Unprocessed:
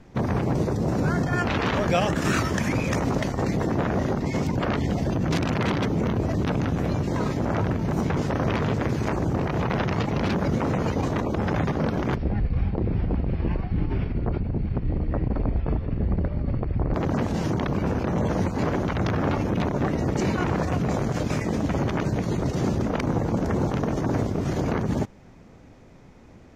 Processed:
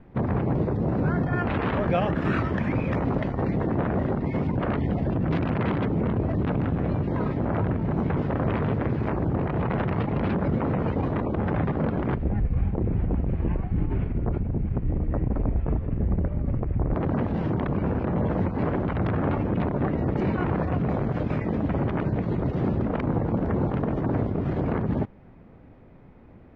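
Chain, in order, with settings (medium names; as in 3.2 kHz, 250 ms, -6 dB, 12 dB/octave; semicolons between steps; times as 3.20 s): distance through air 470 m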